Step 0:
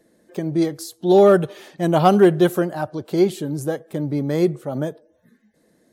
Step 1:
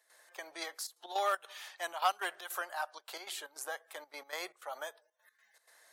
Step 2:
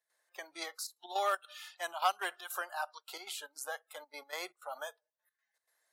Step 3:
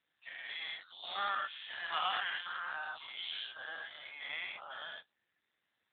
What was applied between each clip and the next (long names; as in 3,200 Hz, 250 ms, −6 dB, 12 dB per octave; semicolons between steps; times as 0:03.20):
high-pass filter 880 Hz 24 dB per octave; gate pattern ".xx.xxxxx.x" 156 BPM −12 dB; multiband upward and downward compressor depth 40%; level −4.5 dB
noise reduction from a noise print of the clip's start 16 dB
every bin's largest magnitude spread in time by 240 ms; first difference; level +7.5 dB; AMR narrowband 7.4 kbit/s 8,000 Hz